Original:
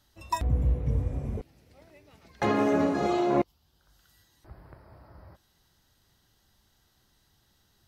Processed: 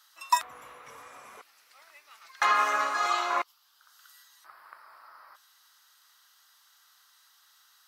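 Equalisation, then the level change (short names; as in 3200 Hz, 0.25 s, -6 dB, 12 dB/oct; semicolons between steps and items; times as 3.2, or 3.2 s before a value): resonant high-pass 1200 Hz, resonance Q 3.7; high shelf 2500 Hz +9.5 dB; 0.0 dB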